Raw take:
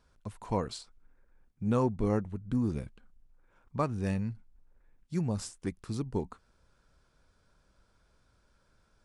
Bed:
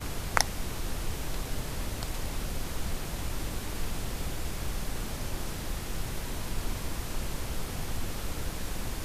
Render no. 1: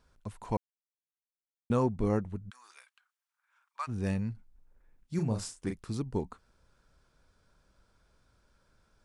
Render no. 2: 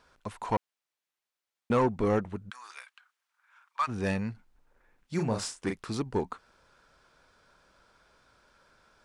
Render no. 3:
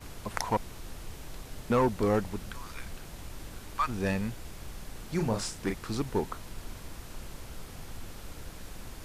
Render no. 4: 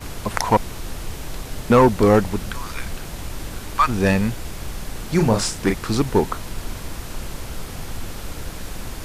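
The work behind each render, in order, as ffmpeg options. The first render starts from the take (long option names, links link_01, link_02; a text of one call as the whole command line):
ffmpeg -i in.wav -filter_complex "[0:a]asplit=3[link_01][link_02][link_03];[link_01]afade=type=out:start_time=2.49:duration=0.02[link_04];[link_02]highpass=frequency=1100:width=0.5412,highpass=frequency=1100:width=1.3066,afade=type=in:start_time=2.49:duration=0.02,afade=type=out:start_time=3.87:duration=0.02[link_05];[link_03]afade=type=in:start_time=3.87:duration=0.02[link_06];[link_04][link_05][link_06]amix=inputs=3:normalize=0,asettb=1/sr,asplit=3[link_07][link_08][link_09];[link_07]atrim=end=5.154[link_10];[link_08]atrim=start=5.15:end=5.77,asetpts=PTS-STARTPTS,afade=type=in:duration=0.004:curve=qsin,afade=type=out:start_time=0.616:duration=0.004:curve=qsin,asplit=2[link_11][link_12];[link_12]adelay=36,volume=-6dB[link_13];[link_11][link_13]amix=inputs=2:normalize=0,atrim=end_sample=27342[link_14];[link_09]atrim=start=5.766[link_15];[link_10][link_14]acrossfade=duration=0.004:curve1=hsin:curve2=qsin[link_16];[link_16][link_15]acrossfade=duration=0.004:curve1=qsin:curve2=hsin,asplit=3[link_17][link_18][link_19];[link_17]atrim=end=0.57,asetpts=PTS-STARTPTS,afade=type=out:start_time=0.566:duration=0.004:curve=hsin[link_20];[link_18]atrim=start=0.57:end=1.7,asetpts=PTS-STARTPTS,volume=0[link_21];[link_19]atrim=start=1.7,asetpts=PTS-STARTPTS,afade=type=in:duration=0.004:curve=hsin[link_22];[link_20][link_21][link_22]concat=n=3:v=0:a=1" out.wav
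ffmpeg -i in.wav -filter_complex "[0:a]asplit=2[link_01][link_02];[link_02]highpass=frequency=720:poles=1,volume=17dB,asoftclip=type=tanh:threshold=-15dB[link_03];[link_01][link_03]amix=inputs=2:normalize=0,lowpass=frequency=3400:poles=1,volume=-6dB" out.wav
ffmpeg -i in.wav -i bed.wav -filter_complex "[1:a]volume=-9dB[link_01];[0:a][link_01]amix=inputs=2:normalize=0" out.wav
ffmpeg -i in.wav -af "volume=12dB,alimiter=limit=-2dB:level=0:latency=1" out.wav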